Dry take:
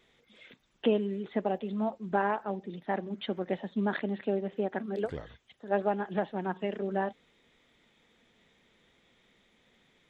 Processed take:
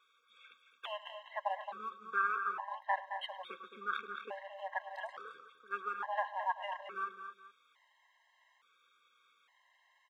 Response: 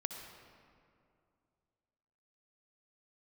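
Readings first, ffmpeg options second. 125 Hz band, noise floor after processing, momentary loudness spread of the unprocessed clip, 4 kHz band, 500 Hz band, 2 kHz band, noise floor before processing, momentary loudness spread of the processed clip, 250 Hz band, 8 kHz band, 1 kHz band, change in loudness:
under -30 dB, -72 dBFS, 7 LU, -2.5 dB, -15.5 dB, +1.0 dB, -68 dBFS, 14 LU, -31.0 dB, no reading, -1.5 dB, -7.0 dB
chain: -filter_complex "[0:a]asplit=2[s0][s1];[s1]aeval=exprs='sgn(val(0))*max(abs(val(0))-0.00668,0)':c=same,volume=0.282[s2];[s0][s2]amix=inputs=2:normalize=0,highpass=f=1100:t=q:w=4.7,aecho=1:1:105|219|246|424:0.119|0.376|0.2|0.112,afftfilt=real='re*gt(sin(2*PI*0.58*pts/sr)*(1-2*mod(floor(b*sr/1024/540),2)),0)':imag='im*gt(sin(2*PI*0.58*pts/sr)*(1-2*mod(floor(b*sr/1024/540),2)),0)':win_size=1024:overlap=0.75,volume=0.668"

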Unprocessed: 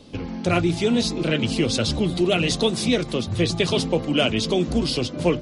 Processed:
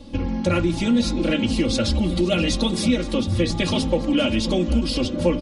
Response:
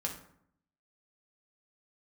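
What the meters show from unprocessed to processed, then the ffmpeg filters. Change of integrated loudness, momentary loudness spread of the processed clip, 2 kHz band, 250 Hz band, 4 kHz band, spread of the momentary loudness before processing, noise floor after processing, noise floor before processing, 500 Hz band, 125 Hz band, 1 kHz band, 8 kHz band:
+0.5 dB, 2 LU, -1.5 dB, +2.5 dB, -1.5 dB, 3 LU, -28 dBFS, -33 dBFS, -1.0 dB, +0.5 dB, -1.5 dB, -1.5 dB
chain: -filter_complex "[0:a]lowshelf=f=140:g=11,aecho=1:1:3.6:0.95,bandreject=f=146.6:t=h:w=4,bandreject=f=293.2:t=h:w=4,bandreject=f=439.8:t=h:w=4,bandreject=f=586.4:t=h:w=4,bandreject=f=733:t=h:w=4,bandreject=f=879.6:t=h:w=4,bandreject=f=1026.2:t=h:w=4,bandreject=f=1172.8:t=h:w=4,bandreject=f=1319.4:t=h:w=4,bandreject=f=1466:t=h:w=4,bandreject=f=1612.6:t=h:w=4,bandreject=f=1759.2:t=h:w=4,bandreject=f=1905.8:t=h:w=4,bandreject=f=2052.4:t=h:w=4,bandreject=f=2199:t=h:w=4,bandreject=f=2345.6:t=h:w=4,bandreject=f=2492.2:t=h:w=4,bandreject=f=2638.8:t=h:w=4,bandreject=f=2785.4:t=h:w=4,bandreject=f=2932:t=h:w=4,bandreject=f=3078.6:t=h:w=4,bandreject=f=3225.2:t=h:w=4,bandreject=f=3371.8:t=h:w=4,bandreject=f=3518.4:t=h:w=4,bandreject=f=3665:t=h:w=4,bandreject=f=3811.6:t=h:w=4,acompressor=threshold=0.141:ratio=2.5,aecho=1:1:524:0.15,asplit=2[s0][s1];[1:a]atrim=start_sample=2205,lowpass=3900[s2];[s1][s2]afir=irnorm=-1:irlink=0,volume=0.188[s3];[s0][s3]amix=inputs=2:normalize=0,volume=0.794"

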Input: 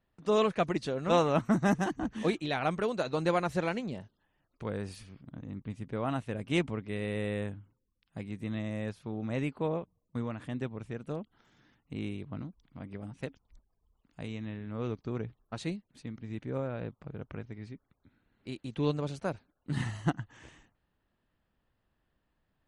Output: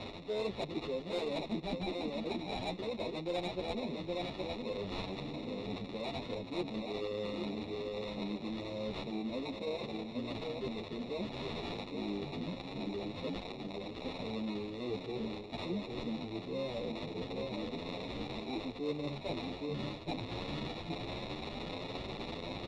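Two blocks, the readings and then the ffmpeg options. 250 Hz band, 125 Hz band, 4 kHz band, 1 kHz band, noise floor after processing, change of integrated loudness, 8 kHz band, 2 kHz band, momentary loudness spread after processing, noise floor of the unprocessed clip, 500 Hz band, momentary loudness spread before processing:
-4.0 dB, -8.0 dB, +3.0 dB, -6.5 dB, -46 dBFS, -5.5 dB, no reading, -5.5 dB, 4 LU, -79 dBFS, -4.0 dB, 17 LU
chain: -filter_complex "[0:a]aeval=exprs='val(0)+0.5*0.0168*sgn(val(0))':c=same,highpass=250,asplit=2[s0][s1];[s1]adelay=816.3,volume=0.447,highshelf=f=4000:g=-18.4[s2];[s0][s2]amix=inputs=2:normalize=0,acrossover=split=690[s3][s4];[s4]acrusher=samples=28:mix=1:aa=0.000001[s5];[s3][s5]amix=inputs=2:normalize=0,lowpass=f=3700:t=q:w=4.3,asoftclip=type=tanh:threshold=0.126,areverse,acompressor=threshold=0.00891:ratio=5,areverse,asplit=2[s6][s7];[s7]adelay=9.9,afreqshift=1.3[s8];[s6][s8]amix=inputs=2:normalize=1,volume=2.51"

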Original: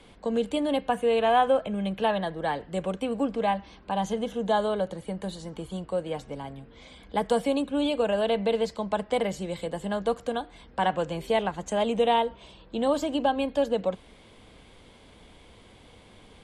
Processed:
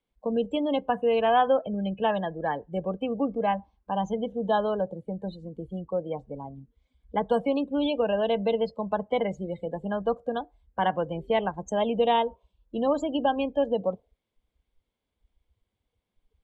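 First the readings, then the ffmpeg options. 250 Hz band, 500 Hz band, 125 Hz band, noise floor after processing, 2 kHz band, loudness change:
0.0 dB, 0.0 dB, 0.0 dB, -84 dBFS, -1.5 dB, 0.0 dB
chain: -af "afftdn=nr=32:nf=-34"

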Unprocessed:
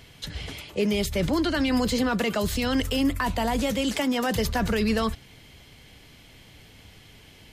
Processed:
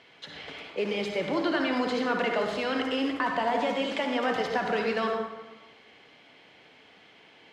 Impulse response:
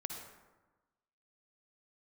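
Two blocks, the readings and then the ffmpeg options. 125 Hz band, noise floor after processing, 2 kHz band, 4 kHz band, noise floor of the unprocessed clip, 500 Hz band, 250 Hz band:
-14.0 dB, -56 dBFS, 0.0 dB, -4.5 dB, -51 dBFS, -0.5 dB, -6.5 dB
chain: -filter_complex "[0:a]acrusher=bits=5:mode=log:mix=0:aa=0.000001,highpass=370,lowpass=3000[s0];[1:a]atrim=start_sample=2205[s1];[s0][s1]afir=irnorm=-1:irlink=0,volume=1.19"

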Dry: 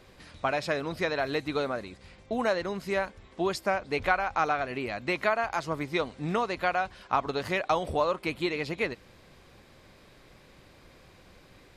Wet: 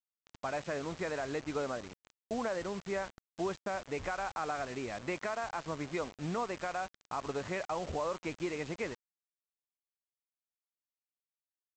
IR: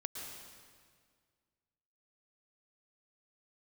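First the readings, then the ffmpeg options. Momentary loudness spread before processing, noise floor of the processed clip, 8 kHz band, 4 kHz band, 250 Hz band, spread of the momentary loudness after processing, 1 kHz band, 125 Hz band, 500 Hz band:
6 LU, under -85 dBFS, 0.0 dB, -9.5 dB, -5.5 dB, 4 LU, -8.5 dB, -5.5 dB, -7.0 dB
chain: -af "lowpass=2000,alimiter=limit=0.0944:level=0:latency=1:release=51,aresample=16000,acrusher=bits=6:mix=0:aa=0.000001,aresample=44100,volume=0.562"

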